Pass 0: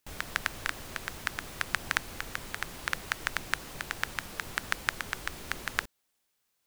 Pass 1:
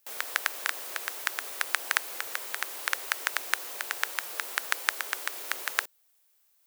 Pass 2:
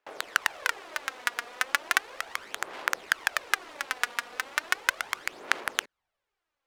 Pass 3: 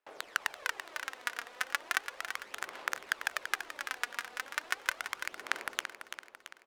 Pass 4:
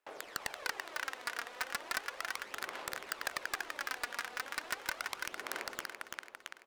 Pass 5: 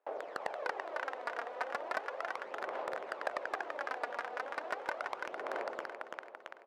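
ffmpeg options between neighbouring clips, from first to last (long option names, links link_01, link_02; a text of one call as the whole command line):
ffmpeg -i in.wav -af "highpass=frequency=410:width=0.5412,highpass=frequency=410:width=1.3066,highshelf=frequency=10000:gain=12,volume=2dB" out.wav
ffmpeg -i in.wav -af "aphaser=in_gain=1:out_gain=1:delay=4.2:decay=0.55:speed=0.36:type=sinusoidal,asubboost=boost=3.5:cutoff=210,adynamicsmooth=sensitivity=6:basefreq=1900,volume=1.5dB" out.wav
ffmpeg -i in.wav -af "aecho=1:1:336|672|1008|1344|1680|2016:0.355|0.181|0.0923|0.0471|0.024|0.0122,volume=-7dB" out.wav
ffmpeg -i in.wav -af "aeval=exprs='0.0562*(abs(mod(val(0)/0.0562+3,4)-2)-1)':channel_layout=same,volume=2.5dB" out.wav
ffmpeg -i in.wav -af "bandpass=frequency=600:width_type=q:width=1.8:csg=0,volume=11dB" out.wav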